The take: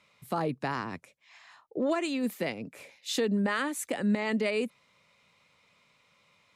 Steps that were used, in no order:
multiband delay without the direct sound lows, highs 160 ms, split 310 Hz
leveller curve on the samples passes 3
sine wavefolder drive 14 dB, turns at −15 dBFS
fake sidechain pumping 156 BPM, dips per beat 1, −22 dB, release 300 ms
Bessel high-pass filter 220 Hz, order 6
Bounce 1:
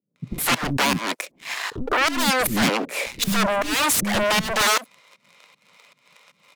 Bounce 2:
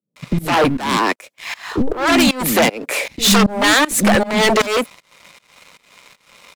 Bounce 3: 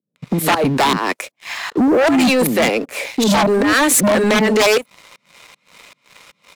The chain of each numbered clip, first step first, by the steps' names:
leveller curve on the samples, then Bessel high-pass filter, then sine wavefolder, then fake sidechain pumping, then multiband delay without the direct sound
Bessel high-pass filter, then sine wavefolder, then multiband delay without the direct sound, then leveller curve on the samples, then fake sidechain pumping
fake sidechain pumping, then multiband delay without the direct sound, then sine wavefolder, then Bessel high-pass filter, then leveller curve on the samples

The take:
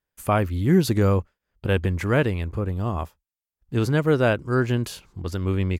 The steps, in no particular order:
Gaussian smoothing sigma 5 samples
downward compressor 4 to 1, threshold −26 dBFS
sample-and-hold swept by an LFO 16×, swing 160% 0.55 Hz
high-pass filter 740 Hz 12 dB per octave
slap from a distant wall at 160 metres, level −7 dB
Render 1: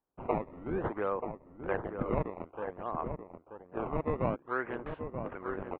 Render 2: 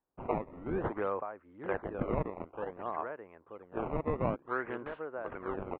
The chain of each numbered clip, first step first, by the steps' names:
high-pass filter, then sample-and-hold swept by an LFO, then Gaussian smoothing, then downward compressor, then slap from a distant wall
high-pass filter, then downward compressor, then slap from a distant wall, then sample-and-hold swept by an LFO, then Gaussian smoothing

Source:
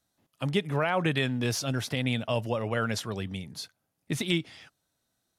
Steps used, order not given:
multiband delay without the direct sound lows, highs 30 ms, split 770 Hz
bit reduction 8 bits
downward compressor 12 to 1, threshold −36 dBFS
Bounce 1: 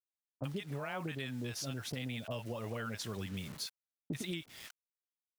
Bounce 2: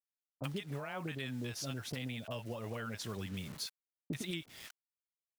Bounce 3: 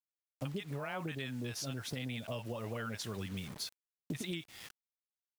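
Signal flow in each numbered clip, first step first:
bit reduction, then multiband delay without the direct sound, then downward compressor
bit reduction, then downward compressor, then multiband delay without the direct sound
multiband delay without the direct sound, then bit reduction, then downward compressor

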